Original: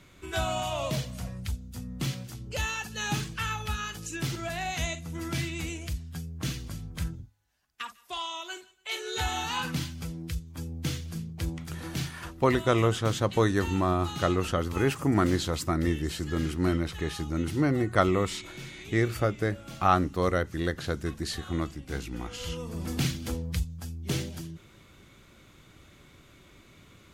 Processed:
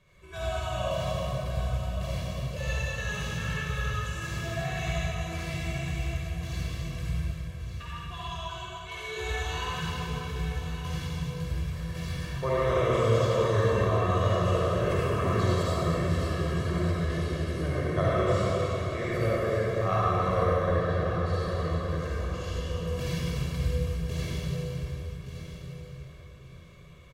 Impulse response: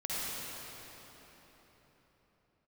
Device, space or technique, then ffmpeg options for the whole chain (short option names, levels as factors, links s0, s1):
swimming-pool hall: -filter_complex "[0:a]aecho=1:1:1.8:0.79,asettb=1/sr,asplit=3[s0][s1][s2];[s0]atrim=end=20.384[s3];[s1]atrim=start=20.38:end=21.34,asetpts=PTS-STARTPTS,afade=t=in:d=0.004:c=qsin,afade=t=out:st=0.956:d=0.004:c=qsin,bass=f=250:g=3,treble=f=4000:g=-10[s4];[s2]atrim=start=21.336[s5];[s3][s4]acrossfade=d=0.004:c1=hsin:c2=qsin[s6];[s6][s5]acrossfade=d=0.004:c1=qsin:c2=hsin[s7];[1:a]atrim=start_sample=2205[s8];[s7][s8]afir=irnorm=-1:irlink=0,highshelf=f=4000:g=-6,aecho=1:1:1171|2342:0.299|0.0537,volume=0.422"